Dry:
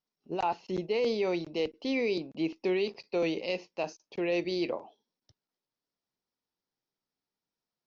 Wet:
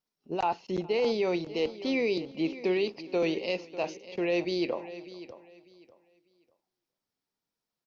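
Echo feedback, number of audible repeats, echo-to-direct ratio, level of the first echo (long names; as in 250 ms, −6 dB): repeats not evenly spaced, 3, −14.0 dB, −23.0 dB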